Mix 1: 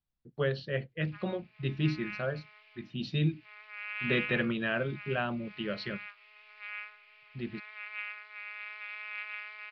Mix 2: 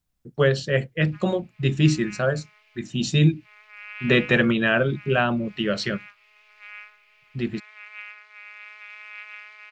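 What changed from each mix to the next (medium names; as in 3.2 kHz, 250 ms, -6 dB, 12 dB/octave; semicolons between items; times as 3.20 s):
speech +11.0 dB; master: remove steep low-pass 4.8 kHz 48 dB/octave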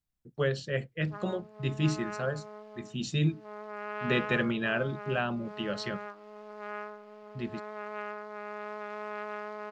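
speech -9.5 dB; background: remove resonant high-pass 2.4 kHz, resonance Q 5.3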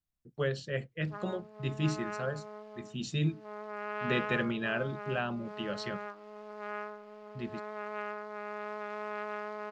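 speech -3.0 dB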